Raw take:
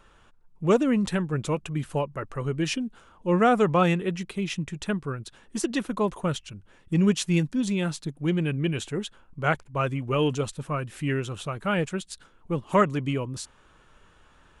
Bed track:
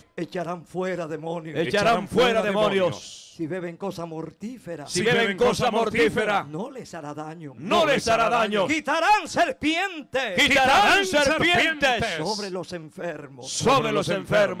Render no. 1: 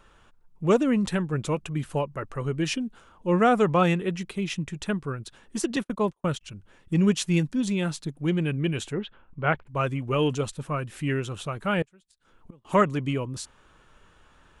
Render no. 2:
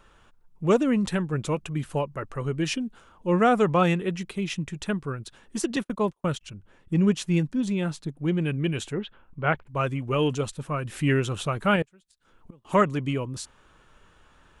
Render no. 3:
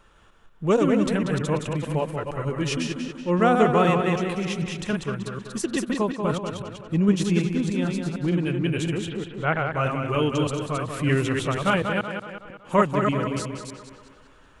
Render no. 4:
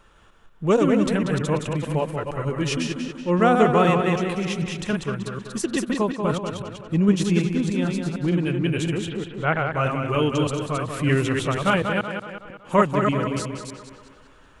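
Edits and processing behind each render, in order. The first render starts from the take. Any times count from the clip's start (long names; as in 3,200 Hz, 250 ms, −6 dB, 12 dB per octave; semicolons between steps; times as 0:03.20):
0:05.76–0:06.41: noise gate −33 dBFS, range −38 dB; 0:08.93–0:09.67: low-pass filter 3,200 Hz 24 dB per octave; 0:11.82–0:12.65: gate with flip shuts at −31 dBFS, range −27 dB
0:06.50–0:08.41: high-shelf EQ 2,300 Hz −6 dB; 0:10.85–0:11.76: clip gain +4.5 dB
delay that plays each chunk backwards 154 ms, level −4 dB; on a send: tape delay 188 ms, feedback 54%, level −6 dB, low-pass 5,600 Hz
level +1.5 dB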